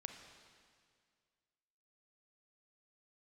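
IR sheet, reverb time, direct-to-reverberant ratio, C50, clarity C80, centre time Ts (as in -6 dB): 2.0 s, 5.0 dB, 6.0 dB, 7.0 dB, 43 ms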